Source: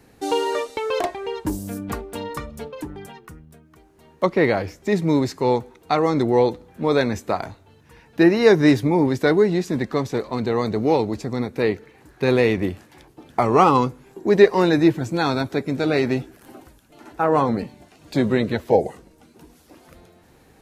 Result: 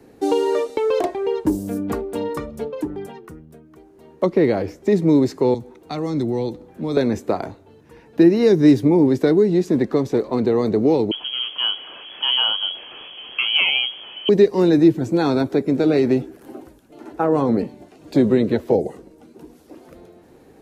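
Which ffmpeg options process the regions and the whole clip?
-filter_complex "[0:a]asettb=1/sr,asplit=3[a][b][c];[a]atrim=end=5.544[d];[b]atrim=start=5.54:end=6.97,asetpts=PTS-STARTPTS,afade=t=in:d=0.004:c=qsin,afade=t=out:st=1.426:d=0.004:c=qsin,equalizer=f=440:w=4:g=-4.5,acrossover=split=200|3000[e][f][g];[f]acompressor=threshold=-40dB:ratio=2:attack=3.2:release=140:knee=2.83:detection=peak[h];[e][h][g]amix=inputs=3:normalize=0[i];[c]atrim=start=6.966[j];[d][i]acrossfade=d=0.004:c1=hsin:c2=qsin[k];[k][j]acrossfade=d=0.004:c1=qsin:c2=hsin,asettb=1/sr,asplit=3[l][m][n];[l]atrim=end=11.114[o];[m]atrim=start=11.11:end=14.29,asetpts=PTS-STARTPTS,afade=t=in:d=0.004:c=qsin,afade=t=out:st=3.176:d=0.004:c=qsin,aeval=exprs='val(0)+0.5*0.0299*sgn(val(0))':c=same,equalizer=f=1.5k:w=1.7:g=-7.5,lowpass=f=2.9k:t=q:w=0.5098,lowpass=f=2.9k:t=q:w=0.6013,lowpass=f=2.9k:t=q:w=0.9,lowpass=f=2.9k:t=q:w=2.563,afreqshift=-3400[p];[n]atrim=start=14.286[q];[o][p]acrossfade=d=0.004:c1=hsin:c2=qsin[r];[r][q]acrossfade=d=0.004:c1=qsin:c2=hsin,equalizer=f=370:w=0.65:g=11.5,acrossover=split=270|3000[s][t][u];[t]acompressor=threshold=-14dB:ratio=6[v];[s][v][u]amix=inputs=3:normalize=0,volume=-3dB"

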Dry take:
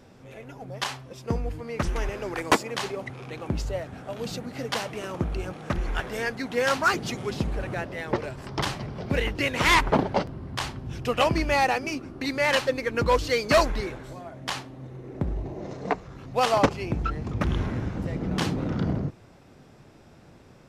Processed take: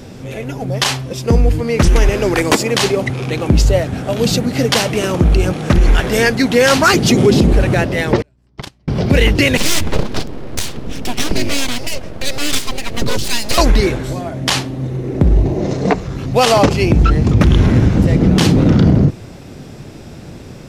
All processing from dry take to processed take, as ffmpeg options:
-filter_complex "[0:a]asettb=1/sr,asplit=3[a][b][c];[a]atrim=end=7.104[d];[b]atrim=start=7.1:end=7.53,asetpts=PTS-STARTPTS,afade=t=in:d=0.004:c=qsin,afade=t=out:st=0.426:d=0.004:c=qsin,highpass=47,equalizer=f=310:t=o:w=2:g=8.5[e];[c]atrim=start=7.526[f];[d][e]acrossfade=d=0.004:c1=hsin:c2=qsin[g];[g][f]acrossfade=d=0.004:c1=qsin:c2=hsin,asettb=1/sr,asplit=3[h][i][j];[h]atrim=end=8.224[k];[i]atrim=start=8.22:end=8.88,asetpts=PTS-STARTPTS,afade=t=in:d=0.004:c=qsin,afade=t=out:st=0.656:d=0.004:c=qsin,agate=range=-43dB:threshold=-25dB:ratio=16:release=100:detection=peak,acompressor=threshold=-39dB:ratio=12:attack=3.2:release=140:knee=1:detection=peak,aeval=exprs='val(0)+0.000178*(sin(2*PI*60*n/s)+sin(2*PI*2*60*n/s)/2+sin(2*PI*3*60*n/s)/3+sin(2*PI*4*60*n/s)/4+sin(2*PI*5*60*n/s)/5)':c=same[l];[j]atrim=start=8.876[m];[k][l]acrossfade=d=0.004:c1=hsin:c2=qsin[n];[n][m]acrossfade=d=0.004:c1=qsin:c2=hsin,asettb=1/sr,asplit=3[o][p][q];[o]atrim=end=9.574[r];[p]atrim=start=9.57:end=13.58,asetpts=PTS-STARTPTS,afade=t=in:d=0.004:c=qsin,afade=t=out:st=4.006:d=0.004:c=qsin,bass=f=250:g=-7,treble=f=4k:g=-5,acrossover=split=310|3000[s][t][u];[t]acompressor=threshold=-49dB:ratio=2:attack=3.2:release=140:knee=2.83:detection=peak[v];[s][v][u]amix=inputs=3:normalize=0,aeval=exprs='abs(val(0))':c=same[w];[q]atrim=start=13.576[x];[r][w]acrossfade=d=0.004:c1=hsin:c2=qsin[y];[y][x]acrossfade=d=0.004:c1=qsin:c2=hsin,equalizer=f=1.1k:t=o:w=2.1:g=-7.5,alimiter=level_in=21dB:limit=-1dB:release=50:level=0:latency=1,volume=-1dB"

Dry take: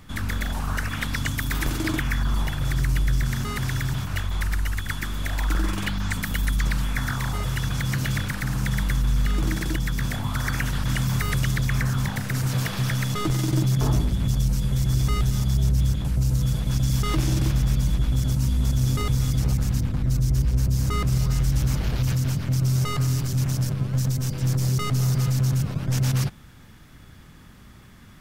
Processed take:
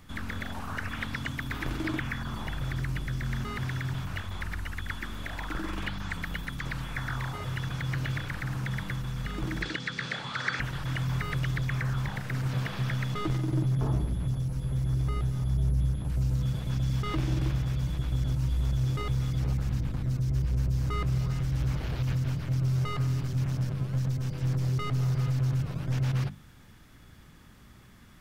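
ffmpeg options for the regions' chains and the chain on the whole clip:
-filter_complex "[0:a]asettb=1/sr,asplit=3[a][b][c];[a]atrim=end=9.624[d];[b]atrim=start=9.62:end=10.6,asetpts=PTS-STARTPTS,afade=t=in:d=0.004:c=qsin,afade=t=out:st=0.976:d=0.004:c=qsin,acontrast=77,highpass=290,equalizer=f=330:t=q:w=4:g=-9,equalizer=f=690:t=q:w=4:g=-9,equalizer=f=1k:t=q:w=4:g=-8,equalizer=f=4.2k:t=q:w=4:g=6,lowpass=f=7.9k:w=0.5412,lowpass=f=7.9k:w=1.3066[e];[c]atrim=start=10.596[f];[d][e]acrossfade=d=0.004:c1=hsin:c2=qsin[g];[g][f]acrossfade=d=0.004:c1=qsin:c2=hsin,asettb=1/sr,asplit=3[h][i][j];[h]atrim=end=13.384[k];[i]atrim=start=13.38:end=16.1,asetpts=PTS-STARTPTS,afade=t=in:d=0.004:c=qsin,afade=t=out:st=2.716:d=0.004:c=qsin,aeval=exprs='val(0)+0.01*sin(2*PI*11000*n/s)':c=same,highshelf=f=2.1k:g=-11[l];[j]atrim=start=16.096[m];[k][l]acrossfade=d=0.004:c1=hsin:c2=qsin[n];[n][m]acrossfade=d=0.004:c1=qsin:c2=hsin,bandreject=f=50:t=h:w=6,bandreject=f=100:t=h:w=6,bandreject=f=150:t=h:w=6,bandreject=f=200:t=h:w=6,bandreject=f=250:t=h:w=6,acrossover=split=3900[o][p];[p]acompressor=threshold=-49dB:ratio=4:attack=1:release=60[q];[o][q]amix=inputs=2:normalize=0,volume=-5dB"

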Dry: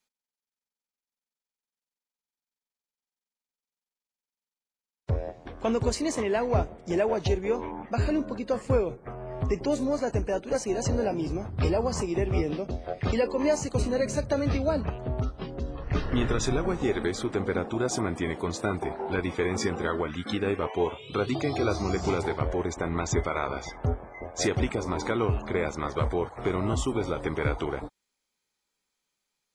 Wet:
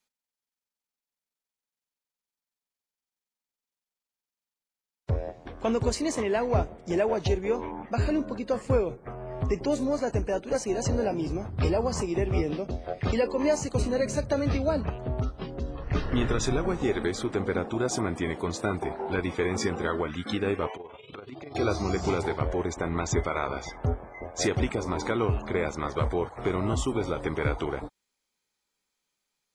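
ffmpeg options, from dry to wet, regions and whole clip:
-filter_complex "[0:a]asettb=1/sr,asplit=3[a][b][c];[a]atrim=end=20.764[d];[b]atrim=start=20.76:end=21.55,asetpts=PTS-STARTPTS,afade=t=in:d=0.004:c=qsin,afade=t=out:st=0.786:d=0.004:c=qsin,bass=f=250:g=-6,treble=f=4k:g=-14,acompressor=threshold=-35dB:ratio=8:attack=3.2:release=140:knee=1:detection=peak,tremolo=f=21:d=0.621[e];[c]atrim=start=21.546[f];[d][e]acrossfade=d=0.004:c1=hsin:c2=qsin[g];[g][f]acrossfade=d=0.004:c1=qsin:c2=hsin"

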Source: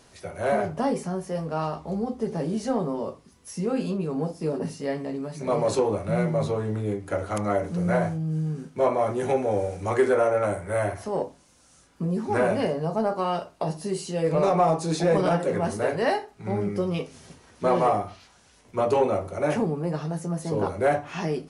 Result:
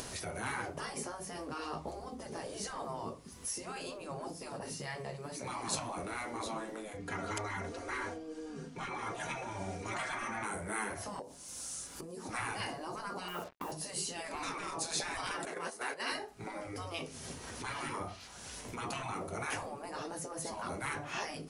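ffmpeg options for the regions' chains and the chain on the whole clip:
-filter_complex "[0:a]asettb=1/sr,asplit=3[a][b][c];[a]atrim=end=6.974[d];[b]atrim=start=6.97:end=10.43,asetpts=PTS-STARTPTS,afade=t=in:d=0.004:c=qsin,afade=t=out:st=3.456:d=0.004:c=qsin,lowpass=6.4k,aecho=1:1:4.3:0.82,atrim=end_sample=152586[e];[c]atrim=start=10.426[f];[d][e]acrossfade=d=0.004:c1=hsin:c2=qsin[g];[g][f]acrossfade=d=0.004:c1=qsin:c2=hsin,asettb=1/sr,asplit=3[h][i][j];[h]atrim=end=11.194[k];[i]atrim=start=11.19:end=12.29,asetpts=PTS-STARTPTS,afade=t=in:d=0.004:c=qsin,afade=t=out:st=1.096:d=0.004:c=qsin,bass=f=250:g=-2,treble=f=4k:g=8,acompressor=threshold=-37dB:ratio=8:attack=3.2:release=140:knee=1:detection=peak[l];[j]atrim=start=12.286[m];[k][l]acrossfade=d=0.004:c1=hsin:c2=qsin[n];[n][m]acrossfade=d=0.004:c1=qsin:c2=hsin,asettb=1/sr,asplit=3[o][p][q];[o]atrim=end=13.284[r];[p]atrim=start=13.28:end=13.72,asetpts=PTS-STARTPTS,afade=t=in:d=0.004:c=qsin,afade=t=out:st=0.436:d=0.004:c=qsin,lowpass=f=2.8k:w=0.5412,lowpass=f=2.8k:w=1.3066,acrusher=bits=7:mix=0:aa=0.5[s];[q]atrim=start=13.716[t];[r][s]acrossfade=d=0.004:c1=hsin:c2=qsin[u];[u][t]acrossfade=d=0.004:c1=qsin:c2=hsin,asettb=1/sr,asplit=3[v][w][x];[v]atrim=end=15.454[y];[w]atrim=start=15.45:end=16.12,asetpts=PTS-STARTPTS,afade=t=in:d=0.004:c=qsin,afade=t=out:st=0.666:d=0.004:c=qsin,highpass=610,agate=range=-10dB:threshold=-34dB:ratio=16:release=100:detection=peak[z];[x]atrim=start=16.116[aa];[y][z]acrossfade=d=0.004:c1=hsin:c2=qsin[ab];[ab][aa]acrossfade=d=0.004:c1=qsin:c2=hsin,highshelf=f=7k:g=7.5,acompressor=mode=upward:threshold=-30dB:ratio=2.5,afftfilt=real='re*lt(hypot(re,im),0.126)':imag='im*lt(hypot(re,im),0.126)':win_size=1024:overlap=0.75,volume=-3dB"

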